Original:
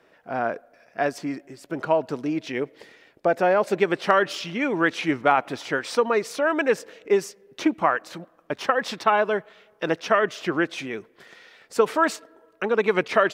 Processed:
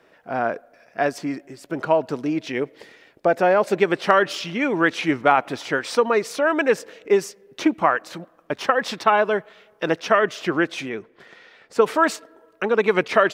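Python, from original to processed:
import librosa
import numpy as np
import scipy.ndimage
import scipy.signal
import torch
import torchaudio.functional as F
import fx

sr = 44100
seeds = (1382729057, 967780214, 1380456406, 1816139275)

y = fx.lowpass(x, sr, hz=3200.0, slope=6, at=(10.89, 11.82))
y = y * 10.0 ** (2.5 / 20.0)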